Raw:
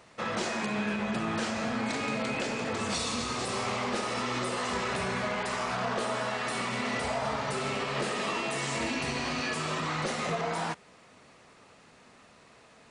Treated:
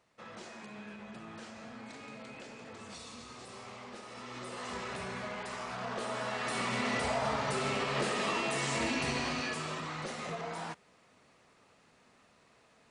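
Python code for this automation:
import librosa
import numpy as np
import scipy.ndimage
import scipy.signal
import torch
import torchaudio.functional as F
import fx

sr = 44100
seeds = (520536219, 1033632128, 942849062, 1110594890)

y = fx.gain(x, sr, db=fx.line((4.06, -16.0), (4.7, -8.5), (5.73, -8.5), (6.71, -1.0), (9.15, -1.0), (9.91, -8.0)))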